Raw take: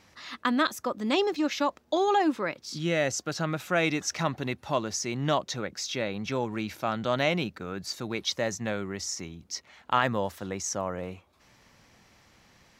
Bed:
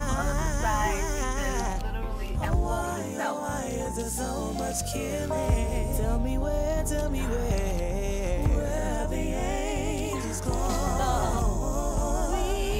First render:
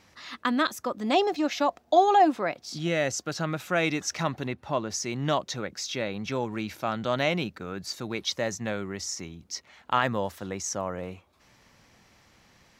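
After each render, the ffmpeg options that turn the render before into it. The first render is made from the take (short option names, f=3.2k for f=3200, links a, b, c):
-filter_complex "[0:a]asettb=1/sr,asplit=3[a][b][c];[a]atrim=end=1.034[d];[b]atrim=start=1.03:end=2.88,asetpts=PTS-STARTPTS,afade=t=in:d=0.004:c=qsin,afade=t=out:st=1.846:d=0.004:c=qsin,equalizer=f=710:t=o:w=0.23:g=15[e];[c]atrim=start=2.876[f];[d][e]acrossfade=d=0.004:c1=hsin:c2=qsin[g];[g][f]acrossfade=d=0.004:c1=qsin:c2=hsin,asettb=1/sr,asplit=3[h][i][j];[h]atrim=end=4.474[k];[i]atrim=start=4.47:end=4.9,asetpts=PTS-STARTPTS,afade=t=in:d=0.004:c=qsin,afade=t=out:st=0.426:d=0.004:c=qsin,highshelf=f=3.9k:g=-10.5[l];[j]atrim=start=4.896[m];[k][l]acrossfade=d=0.004:c1=hsin:c2=qsin[n];[n][m]acrossfade=d=0.004:c1=qsin:c2=hsin"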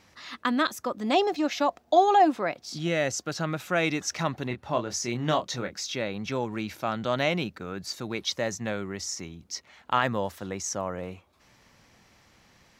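-filter_complex "[0:a]asettb=1/sr,asplit=3[a][b][c];[a]atrim=end=4.484[d];[b]atrim=start=4.48:end=5.8,asetpts=PTS-STARTPTS,afade=t=in:d=0.004:c=qsin,afade=t=out:st=1.316:d=0.004:c=qsin,asplit=2[e][f];[f]adelay=25,volume=-7dB[g];[e][g]amix=inputs=2:normalize=0,atrim=end_sample=58212[h];[c]atrim=start=5.796[i];[d][h]acrossfade=d=0.004:c1=hsin:c2=qsin[j];[j][i]acrossfade=d=0.004:c1=qsin:c2=hsin"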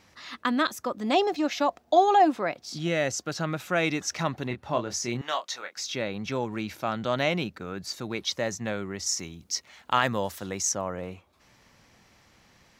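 -filter_complex "[0:a]asettb=1/sr,asplit=3[a][b][c];[a]atrim=end=5.214[d];[b]atrim=start=5.21:end=5.77,asetpts=PTS-STARTPTS,afade=t=in:d=0.004:c=qsin,afade=t=out:st=0.556:d=0.004:c=qsin,highpass=850[e];[c]atrim=start=5.766[f];[d][e]acrossfade=d=0.004:c1=hsin:c2=qsin[g];[g][f]acrossfade=d=0.004:c1=qsin:c2=hsin,asettb=1/sr,asplit=3[h][i][j];[h]atrim=end=9.064[k];[i]atrim=start=9.06:end=10.72,asetpts=PTS-STARTPTS,afade=t=in:d=0.004:c=qsin,afade=t=out:st=1.656:d=0.004:c=qsin,highshelf=f=3.6k:g=8[l];[j]atrim=start=10.716[m];[k][l]acrossfade=d=0.004:c1=hsin:c2=qsin[n];[n][m]acrossfade=d=0.004:c1=qsin:c2=hsin"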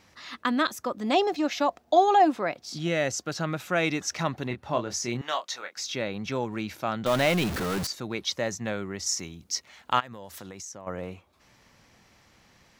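-filter_complex "[0:a]asettb=1/sr,asplit=3[a][b][c];[a]atrim=end=7.064[d];[b]atrim=start=7.06:end=7.87,asetpts=PTS-STARTPTS,afade=t=in:d=0.004:c=qsin,afade=t=out:st=0.806:d=0.004:c=qsin,aeval=exprs='val(0)+0.5*0.0501*sgn(val(0))':c=same[e];[c]atrim=start=7.866[f];[d][e]acrossfade=d=0.004:c1=hsin:c2=qsin[g];[g][f]acrossfade=d=0.004:c1=qsin:c2=hsin,asplit=3[h][i][j];[h]afade=t=out:st=9.99:d=0.02[k];[i]acompressor=threshold=-37dB:ratio=10:attack=3.2:release=140:knee=1:detection=peak,afade=t=in:st=9.99:d=0.02,afade=t=out:st=10.86:d=0.02[l];[j]afade=t=in:st=10.86:d=0.02[m];[k][l][m]amix=inputs=3:normalize=0"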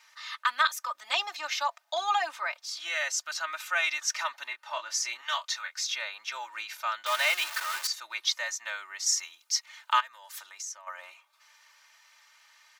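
-af "highpass=f=1k:w=0.5412,highpass=f=1k:w=1.3066,aecho=1:1:3.3:0.88"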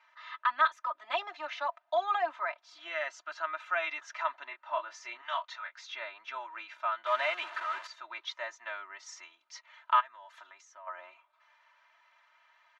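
-af "lowpass=1.6k,aecho=1:1:3:0.65"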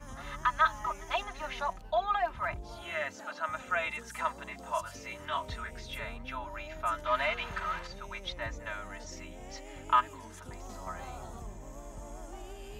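-filter_complex "[1:a]volume=-18dB[a];[0:a][a]amix=inputs=2:normalize=0"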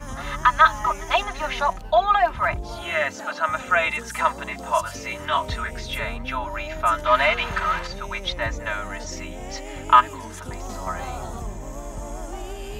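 -af "volume=11.5dB,alimiter=limit=-2dB:level=0:latency=1"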